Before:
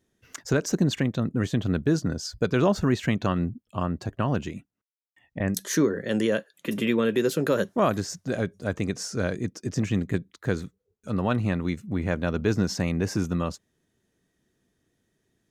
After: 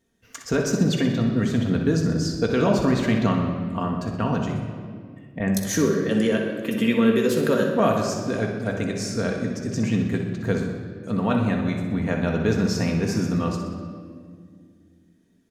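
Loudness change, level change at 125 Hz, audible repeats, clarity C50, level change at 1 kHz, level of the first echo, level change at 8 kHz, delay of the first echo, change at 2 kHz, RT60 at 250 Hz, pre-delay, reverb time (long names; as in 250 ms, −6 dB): +3.5 dB, +3.0 dB, 3, 3.0 dB, +3.5 dB, −8.5 dB, +2.0 dB, 62 ms, +2.5 dB, 3.3 s, 4 ms, 2.0 s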